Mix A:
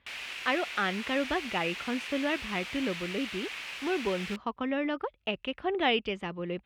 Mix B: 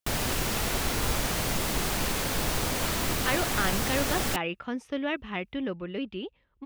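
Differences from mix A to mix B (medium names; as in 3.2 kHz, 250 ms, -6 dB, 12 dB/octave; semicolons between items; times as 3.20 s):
speech: entry +2.80 s; background: remove band-pass filter 2.5 kHz, Q 2.8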